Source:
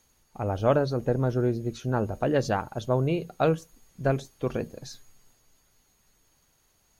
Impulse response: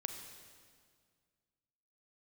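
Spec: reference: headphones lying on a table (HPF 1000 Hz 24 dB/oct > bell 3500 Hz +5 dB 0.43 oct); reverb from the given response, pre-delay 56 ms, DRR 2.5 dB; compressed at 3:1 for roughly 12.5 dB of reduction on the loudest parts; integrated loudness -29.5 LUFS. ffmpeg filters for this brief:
-filter_complex "[0:a]acompressor=threshold=-35dB:ratio=3,asplit=2[a][b];[1:a]atrim=start_sample=2205,adelay=56[c];[b][c]afir=irnorm=-1:irlink=0,volume=-2dB[d];[a][d]amix=inputs=2:normalize=0,highpass=f=1k:w=0.5412,highpass=f=1k:w=1.3066,equalizer=f=3.5k:t=o:w=0.43:g=5,volume=17.5dB"

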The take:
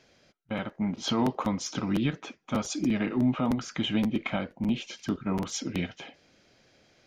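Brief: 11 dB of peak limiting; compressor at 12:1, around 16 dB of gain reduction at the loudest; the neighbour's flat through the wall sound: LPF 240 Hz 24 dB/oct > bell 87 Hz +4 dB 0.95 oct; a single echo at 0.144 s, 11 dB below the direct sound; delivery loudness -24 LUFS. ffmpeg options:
-af "acompressor=threshold=-38dB:ratio=12,alimiter=level_in=10.5dB:limit=-24dB:level=0:latency=1,volume=-10.5dB,lowpass=f=240:w=0.5412,lowpass=f=240:w=1.3066,equalizer=f=87:t=o:w=0.95:g=4,aecho=1:1:144:0.282,volume=24dB"

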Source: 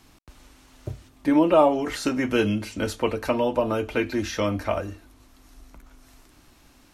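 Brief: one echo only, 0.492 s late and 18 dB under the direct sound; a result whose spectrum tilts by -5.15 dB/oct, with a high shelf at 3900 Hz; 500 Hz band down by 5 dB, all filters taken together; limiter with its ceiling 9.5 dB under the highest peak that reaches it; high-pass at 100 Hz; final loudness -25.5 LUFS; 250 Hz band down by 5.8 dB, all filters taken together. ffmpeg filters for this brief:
-af "highpass=100,equalizer=f=250:t=o:g=-5.5,equalizer=f=500:t=o:g=-5,highshelf=f=3.9k:g=-4.5,alimiter=limit=-18dB:level=0:latency=1,aecho=1:1:492:0.126,volume=5dB"

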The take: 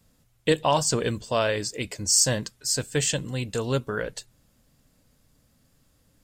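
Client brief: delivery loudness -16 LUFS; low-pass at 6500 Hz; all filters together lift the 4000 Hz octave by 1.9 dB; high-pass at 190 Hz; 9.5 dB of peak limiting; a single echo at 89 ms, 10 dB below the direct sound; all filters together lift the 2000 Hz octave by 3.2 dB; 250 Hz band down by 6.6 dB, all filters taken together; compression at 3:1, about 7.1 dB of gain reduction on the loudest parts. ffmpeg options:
-af "highpass=190,lowpass=6.5k,equalizer=f=250:t=o:g=-7,equalizer=f=2k:t=o:g=3.5,equalizer=f=4k:t=o:g=3,acompressor=threshold=-27dB:ratio=3,alimiter=limit=-20dB:level=0:latency=1,aecho=1:1:89:0.316,volume=16dB"

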